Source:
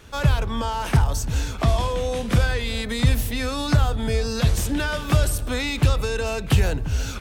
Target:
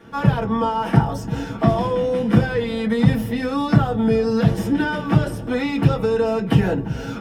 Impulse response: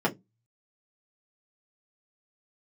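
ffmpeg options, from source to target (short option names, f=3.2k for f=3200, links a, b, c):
-filter_complex "[0:a]asettb=1/sr,asplit=3[a][b][c];[a]atrim=end=5.014[d];[b]atrim=start=5.01:end=5.49,asetpts=PTS-STARTPTS,afade=t=in:d=0.004:c=qsin,afade=t=out:st=0.476:d=0.004:c=qsin,highshelf=f=9.8k:g=-8[e];[c]atrim=start=5.486[f];[d][e]acrossfade=d=0.004:c1=hsin:c2=qsin[g];[g][f]acrossfade=d=0.004:c1=qsin:c2=hsin[h];[1:a]atrim=start_sample=2205[i];[h][i]afir=irnorm=-1:irlink=0,volume=-9.5dB"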